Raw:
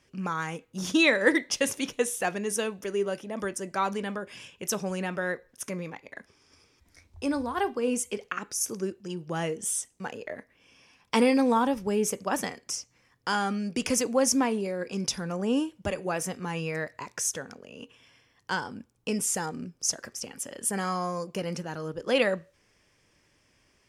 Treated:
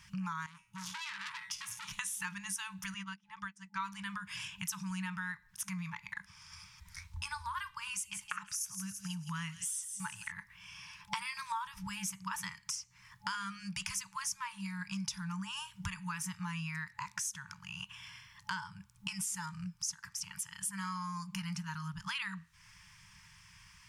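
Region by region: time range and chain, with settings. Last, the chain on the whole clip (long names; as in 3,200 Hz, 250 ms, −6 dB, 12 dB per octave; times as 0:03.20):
0:00.46–0:01.91: tuned comb filter 120 Hz, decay 0.3 s, mix 70% + downward compressor 3 to 1, threshold −35 dBFS + saturating transformer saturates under 4,000 Hz
0:02.94–0:03.80: low-pass filter 5,400 Hz + low-shelf EQ 130 Hz −8.5 dB + expander for the loud parts 2.5 to 1, over −49 dBFS
0:07.71–0:10.32: parametric band 230 Hz −4 dB 0.7 octaves + delay with a high-pass on its return 166 ms, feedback 40%, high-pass 3,300 Hz, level −10 dB
whole clip: brick-wall band-stop 200–860 Hz; downward compressor 4 to 1, threshold −48 dBFS; level +8.5 dB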